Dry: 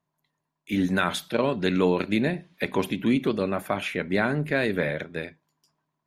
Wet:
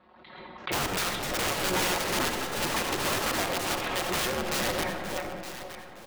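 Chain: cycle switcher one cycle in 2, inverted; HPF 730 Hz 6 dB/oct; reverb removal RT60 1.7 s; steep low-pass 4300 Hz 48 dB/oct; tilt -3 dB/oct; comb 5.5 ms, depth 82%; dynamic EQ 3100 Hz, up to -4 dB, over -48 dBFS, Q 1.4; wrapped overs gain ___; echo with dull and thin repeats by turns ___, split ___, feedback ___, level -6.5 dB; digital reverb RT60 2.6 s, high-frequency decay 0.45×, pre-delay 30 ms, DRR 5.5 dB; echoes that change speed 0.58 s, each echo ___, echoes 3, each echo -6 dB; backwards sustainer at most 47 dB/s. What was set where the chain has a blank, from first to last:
24 dB, 0.458 s, 840 Hz, 53%, +7 st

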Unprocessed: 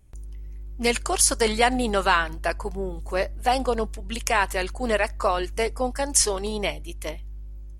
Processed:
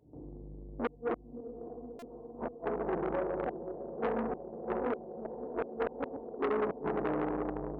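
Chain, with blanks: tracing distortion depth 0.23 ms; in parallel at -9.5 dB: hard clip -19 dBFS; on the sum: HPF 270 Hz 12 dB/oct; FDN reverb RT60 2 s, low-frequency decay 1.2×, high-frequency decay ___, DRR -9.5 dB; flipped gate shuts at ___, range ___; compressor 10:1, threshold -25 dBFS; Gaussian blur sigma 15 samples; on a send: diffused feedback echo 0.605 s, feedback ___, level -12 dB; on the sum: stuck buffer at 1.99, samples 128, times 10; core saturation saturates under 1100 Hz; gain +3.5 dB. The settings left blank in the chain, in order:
0.3×, -4 dBFS, -40 dB, 74%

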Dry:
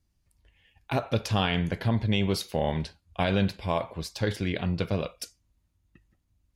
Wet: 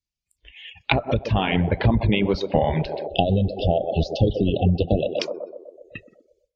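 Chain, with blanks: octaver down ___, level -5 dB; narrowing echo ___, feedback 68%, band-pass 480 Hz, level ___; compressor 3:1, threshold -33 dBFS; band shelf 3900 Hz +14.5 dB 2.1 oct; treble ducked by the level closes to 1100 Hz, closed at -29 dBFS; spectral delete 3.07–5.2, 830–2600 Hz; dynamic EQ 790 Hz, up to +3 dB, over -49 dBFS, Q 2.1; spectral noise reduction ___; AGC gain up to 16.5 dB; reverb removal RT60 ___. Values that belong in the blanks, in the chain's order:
1 oct, 0.125 s, -6 dB, 21 dB, 0.99 s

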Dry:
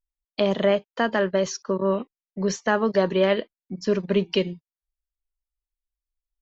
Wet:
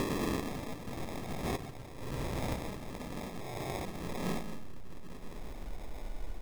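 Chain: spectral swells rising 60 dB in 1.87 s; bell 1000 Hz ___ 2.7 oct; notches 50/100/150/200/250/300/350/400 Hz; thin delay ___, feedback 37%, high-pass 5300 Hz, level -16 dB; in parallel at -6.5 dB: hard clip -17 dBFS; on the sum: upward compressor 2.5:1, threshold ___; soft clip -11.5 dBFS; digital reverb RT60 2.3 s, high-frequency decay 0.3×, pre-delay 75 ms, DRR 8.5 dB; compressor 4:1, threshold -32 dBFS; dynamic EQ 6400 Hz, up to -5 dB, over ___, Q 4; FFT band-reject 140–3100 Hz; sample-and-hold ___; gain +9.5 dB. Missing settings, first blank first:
+5.5 dB, 0.196 s, -26 dBFS, -55 dBFS, 30×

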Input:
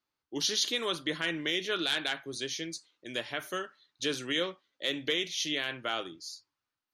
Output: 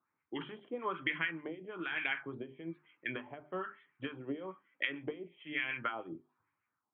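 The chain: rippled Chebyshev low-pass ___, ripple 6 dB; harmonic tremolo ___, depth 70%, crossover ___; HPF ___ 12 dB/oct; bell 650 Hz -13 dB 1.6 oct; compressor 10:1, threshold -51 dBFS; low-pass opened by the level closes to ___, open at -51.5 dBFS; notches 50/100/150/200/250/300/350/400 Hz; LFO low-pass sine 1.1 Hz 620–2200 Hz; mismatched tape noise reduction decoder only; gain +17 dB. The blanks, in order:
3300 Hz, 6.7 Hz, 1200 Hz, 110 Hz, 1800 Hz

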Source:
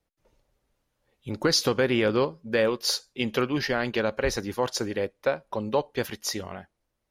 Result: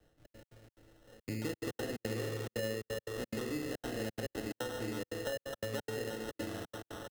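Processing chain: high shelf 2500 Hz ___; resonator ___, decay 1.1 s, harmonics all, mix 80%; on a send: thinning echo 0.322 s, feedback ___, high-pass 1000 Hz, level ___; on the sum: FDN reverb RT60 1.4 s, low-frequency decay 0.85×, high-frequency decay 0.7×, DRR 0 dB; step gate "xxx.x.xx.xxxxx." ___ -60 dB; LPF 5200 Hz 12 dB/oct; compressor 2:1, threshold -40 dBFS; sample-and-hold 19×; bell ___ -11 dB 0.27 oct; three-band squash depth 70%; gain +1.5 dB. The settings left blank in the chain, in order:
-11.5 dB, 110 Hz, 81%, -5 dB, 176 bpm, 980 Hz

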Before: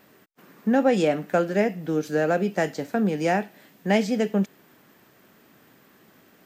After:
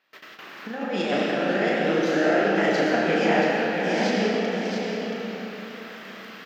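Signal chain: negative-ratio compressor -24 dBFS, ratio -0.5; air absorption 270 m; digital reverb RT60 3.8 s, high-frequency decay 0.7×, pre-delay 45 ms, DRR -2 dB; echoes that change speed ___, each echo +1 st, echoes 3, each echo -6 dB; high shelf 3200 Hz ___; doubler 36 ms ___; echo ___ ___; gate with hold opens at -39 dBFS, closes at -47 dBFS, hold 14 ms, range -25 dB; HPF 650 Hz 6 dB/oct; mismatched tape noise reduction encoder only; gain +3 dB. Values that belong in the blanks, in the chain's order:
0.149 s, +11.5 dB, -4 dB, 0.677 s, -6 dB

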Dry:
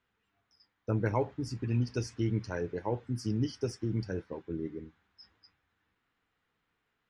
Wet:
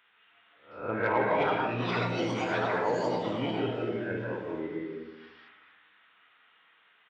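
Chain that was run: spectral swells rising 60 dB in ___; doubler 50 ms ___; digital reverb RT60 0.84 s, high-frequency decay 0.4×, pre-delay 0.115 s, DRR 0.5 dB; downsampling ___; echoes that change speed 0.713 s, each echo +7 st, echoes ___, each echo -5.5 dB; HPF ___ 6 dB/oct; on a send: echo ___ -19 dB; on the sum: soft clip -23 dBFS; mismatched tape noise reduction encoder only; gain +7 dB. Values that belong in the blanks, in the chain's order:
0.43 s, -7 dB, 8000 Hz, 2, 890 Hz, 0.242 s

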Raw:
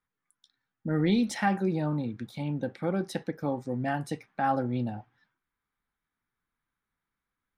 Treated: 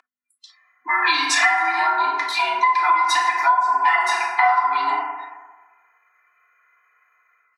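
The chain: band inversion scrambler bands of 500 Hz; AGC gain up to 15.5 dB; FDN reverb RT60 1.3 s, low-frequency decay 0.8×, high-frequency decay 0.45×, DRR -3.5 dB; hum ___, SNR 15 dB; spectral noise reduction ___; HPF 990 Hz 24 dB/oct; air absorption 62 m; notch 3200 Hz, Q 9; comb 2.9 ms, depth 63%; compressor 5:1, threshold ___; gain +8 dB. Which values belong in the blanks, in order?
50 Hz, 25 dB, -23 dBFS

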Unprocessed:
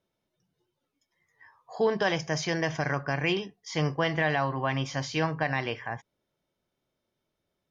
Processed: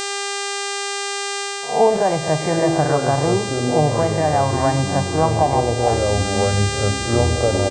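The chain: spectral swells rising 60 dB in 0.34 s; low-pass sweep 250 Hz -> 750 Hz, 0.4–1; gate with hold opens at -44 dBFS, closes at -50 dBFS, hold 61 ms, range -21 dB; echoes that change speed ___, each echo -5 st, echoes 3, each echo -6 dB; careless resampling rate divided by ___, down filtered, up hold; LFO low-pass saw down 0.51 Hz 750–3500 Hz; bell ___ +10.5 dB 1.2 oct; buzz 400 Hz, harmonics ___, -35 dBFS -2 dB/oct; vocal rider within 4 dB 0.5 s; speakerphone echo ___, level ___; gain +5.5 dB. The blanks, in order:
0.213 s, 6×, 85 Hz, 22, 0.1 s, -16 dB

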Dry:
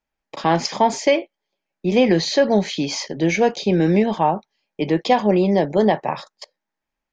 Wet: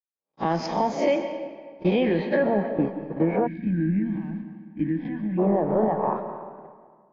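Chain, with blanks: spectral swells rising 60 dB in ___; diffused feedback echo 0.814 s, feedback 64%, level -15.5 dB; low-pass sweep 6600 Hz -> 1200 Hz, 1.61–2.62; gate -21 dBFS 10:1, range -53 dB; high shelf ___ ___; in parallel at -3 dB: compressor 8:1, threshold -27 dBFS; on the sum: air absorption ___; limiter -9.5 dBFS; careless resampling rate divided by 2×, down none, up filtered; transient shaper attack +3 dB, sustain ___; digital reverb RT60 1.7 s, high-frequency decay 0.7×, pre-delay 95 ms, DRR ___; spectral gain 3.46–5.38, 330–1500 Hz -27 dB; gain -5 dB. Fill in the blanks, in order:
0.39 s, 2300 Hz, -10.5 dB, 170 m, -1 dB, 8 dB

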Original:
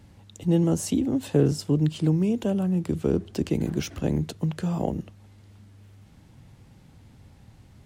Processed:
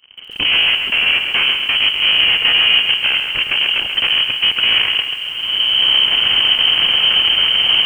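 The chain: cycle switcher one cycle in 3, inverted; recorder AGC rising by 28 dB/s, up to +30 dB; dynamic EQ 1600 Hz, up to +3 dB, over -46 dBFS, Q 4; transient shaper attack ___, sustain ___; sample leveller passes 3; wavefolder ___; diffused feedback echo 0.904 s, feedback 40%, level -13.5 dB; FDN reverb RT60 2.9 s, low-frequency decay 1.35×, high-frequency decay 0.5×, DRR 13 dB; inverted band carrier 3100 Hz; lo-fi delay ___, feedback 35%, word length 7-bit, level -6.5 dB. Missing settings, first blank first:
+3 dB, -10 dB, -11 dBFS, 0.136 s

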